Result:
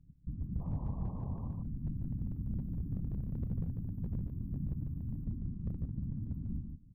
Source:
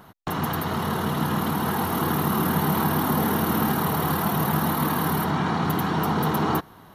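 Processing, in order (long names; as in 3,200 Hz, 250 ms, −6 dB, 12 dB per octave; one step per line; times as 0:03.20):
inverse Chebyshev band-stop filter 260–9,800 Hz, stop band 60 dB
tilt shelving filter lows +6.5 dB, about 1,500 Hz
tuned comb filter 69 Hz, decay 0.64 s, harmonics all, mix 40%
sound drawn into the spectrogram noise, 0:00.60–0:01.48, 330–1,100 Hz −60 dBFS
random phases in short frames
gain into a clipping stage and back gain 34.5 dB
high-frequency loss of the air 64 metres
single-tap delay 147 ms −5.5 dB
level +4.5 dB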